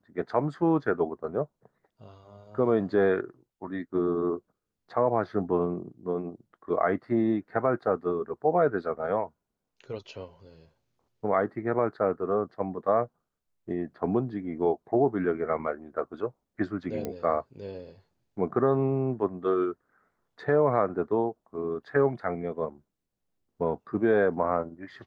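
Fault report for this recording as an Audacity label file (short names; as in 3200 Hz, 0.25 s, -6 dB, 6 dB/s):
17.050000	17.050000	pop -19 dBFS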